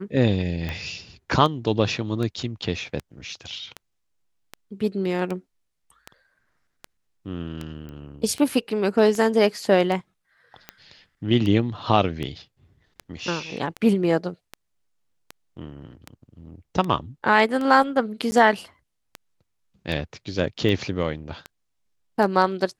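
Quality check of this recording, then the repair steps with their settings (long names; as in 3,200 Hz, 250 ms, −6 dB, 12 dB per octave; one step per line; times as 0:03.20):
scratch tick 78 rpm −17 dBFS
0:07.89: click −27 dBFS
0:18.31–0:18.32: drop-out 10 ms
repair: click removal
repair the gap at 0:18.31, 10 ms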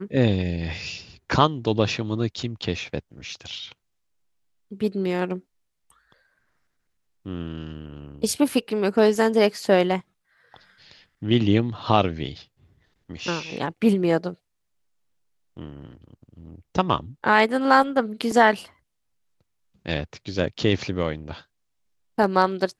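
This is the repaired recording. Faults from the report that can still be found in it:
none of them is left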